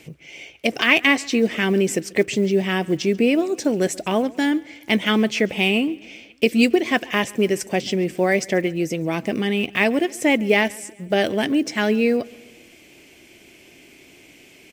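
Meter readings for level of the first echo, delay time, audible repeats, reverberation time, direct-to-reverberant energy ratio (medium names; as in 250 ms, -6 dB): -23.5 dB, 138 ms, 3, no reverb, no reverb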